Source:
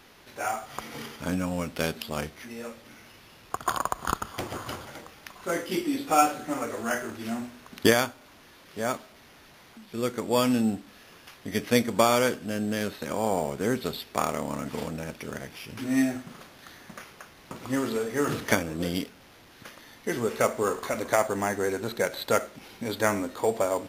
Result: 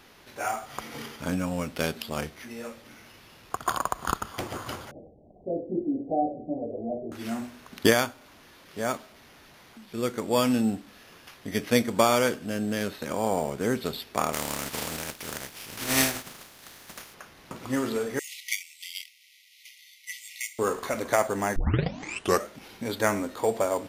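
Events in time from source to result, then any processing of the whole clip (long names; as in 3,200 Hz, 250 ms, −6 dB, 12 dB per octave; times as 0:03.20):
0:04.91–0:07.12: Butterworth low-pass 720 Hz 72 dB per octave
0:14.32–0:17.13: compressing power law on the bin magnitudes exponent 0.41
0:18.19–0:20.59: linear-phase brick-wall high-pass 1,900 Hz
0:21.56: tape start 0.92 s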